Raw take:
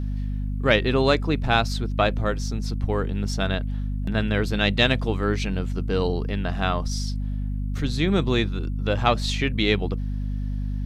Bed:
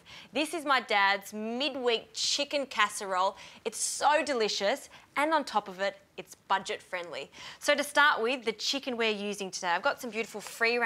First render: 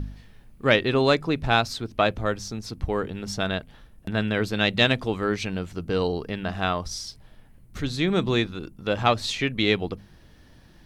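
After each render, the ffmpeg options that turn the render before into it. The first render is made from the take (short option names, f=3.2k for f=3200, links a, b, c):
-af "bandreject=f=50:t=h:w=4,bandreject=f=100:t=h:w=4,bandreject=f=150:t=h:w=4,bandreject=f=200:t=h:w=4,bandreject=f=250:t=h:w=4"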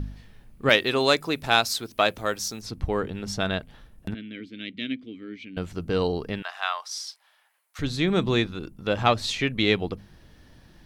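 -filter_complex "[0:a]asettb=1/sr,asplit=3[a][b][c];[a]atrim=end=0.694[d];[b]atrim=start=0.69:end=2.62,asetpts=PTS-STARTPTS,afade=t=in:d=0.004:c=qsin,afade=t=out:st=1.926:d=0.004:c=qsin,aemphasis=mode=production:type=bsi[e];[c]atrim=start=2.616[f];[d][e]acrossfade=d=0.004:c1=hsin:c2=qsin[g];[g][f]acrossfade=d=0.004:c1=qsin:c2=hsin,asettb=1/sr,asplit=3[h][i][j];[h]atrim=end=4.144[k];[i]atrim=start=4.14:end=5.57,asetpts=PTS-STARTPTS,afade=t=in:d=0.004:c=qsin,afade=t=out:st=1.426:d=0.004:c=qsin,asplit=3[l][m][n];[l]bandpass=f=270:t=q:w=8,volume=0dB[o];[m]bandpass=f=2.29k:t=q:w=8,volume=-6dB[p];[n]bandpass=f=3.01k:t=q:w=8,volume=-9dB[q];[o][p][q]amix=inputs=3:normalize=0[r];[j]atrim=start=5.566[s];[k][r]acrossfade=d=0.004:c1=hsin:c2=qsin[t];[t][s]acrossfade=d=0.004:c1=qsin:c2=hsin,asettb=1/sr,asplit=3[u][v][w];[u]atrim=end=6.424[x];[v]atrim=start=6.42:end=7.79,asetpts=PTS-STARTPTS,afade=t=in:d=0.004:c=qsin,afade=t=out:st=1.366:d=0.004:c=qsin,highpass=f=850:w=0.5412,highpass=f=850:w=1.3066[y];[w]atrim=start=7.786[z];[x][y]acrossfade=d=0.004:c1=hsin:c2=qsin[aa];[aa][z]acrossfade=d=0.004:c1=qsin:c2=hsin"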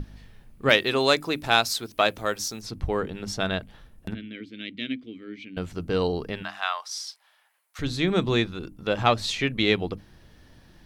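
-af "bandreject=f=50:t=h:w=6,bandreject=f=100:t=h:w=6,bandreject=f=150:t=h:w=6,bandreject=f=200:t=h:w=6,bandreject=f=250:t=h:w=6,bandreject=f=300:t=h:w=6"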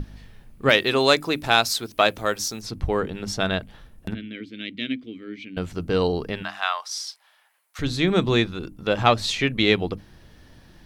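-af "volume=3dB,alimiter=limit=-2dB:level=0:latency=1"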